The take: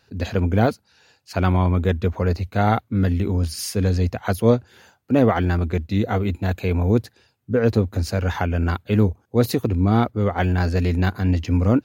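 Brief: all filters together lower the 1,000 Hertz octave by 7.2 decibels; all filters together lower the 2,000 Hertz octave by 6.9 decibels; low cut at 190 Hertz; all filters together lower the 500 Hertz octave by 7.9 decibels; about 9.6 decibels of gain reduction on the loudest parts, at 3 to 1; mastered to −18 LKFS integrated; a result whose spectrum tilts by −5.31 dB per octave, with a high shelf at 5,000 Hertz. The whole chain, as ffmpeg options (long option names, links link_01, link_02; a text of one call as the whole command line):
ffmpeg -i in.wav -af "highpass=190,equalizer=frequency=500:width_type=o:gain=-8,equalizer=frequency=1000:width_type=o:gain=-5,equalizer=frequency=2000:width_type=o:gain=-7.5,highshelf=frequency=5000:gain=4,acompressor=threshold=-30dB:ratio=3,volume=15.5dB" out.wav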